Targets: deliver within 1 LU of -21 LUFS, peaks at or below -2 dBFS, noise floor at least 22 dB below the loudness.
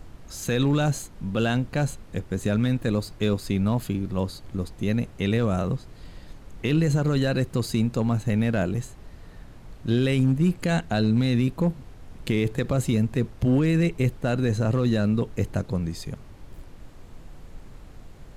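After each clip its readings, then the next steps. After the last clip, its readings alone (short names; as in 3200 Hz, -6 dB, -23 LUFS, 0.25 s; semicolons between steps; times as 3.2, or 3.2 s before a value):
clipped 0.4%; flat tops at -14.0 dBFS; noise floor -46 dBFS; noise floor target -47 dBFS; loudness -25.0 LUFS; peak -14.0 dBFS; loudness target -21.0 LUFS
-> clip repair -14 dBFS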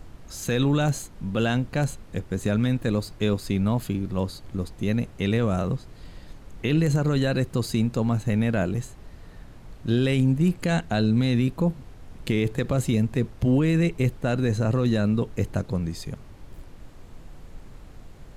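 clipped 0.0%; noise floor -46 dBFS; noise floor target -47 dBFS
-> noise print and reduce 6 dB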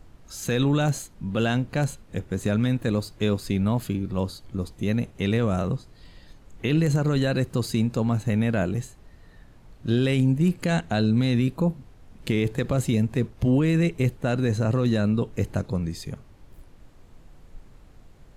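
noise floor -51 dBFS; loudness -25.0 LUFS; peak -10.0 dBFS; loudness target -21.0 LUFS
-> gain +4 dB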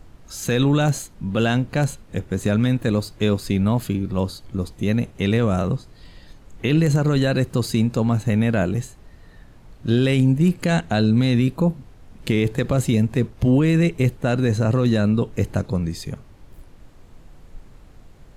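loudness -21.0 LUFS; peak -6.0 dBFS; noise floor -47 dBFS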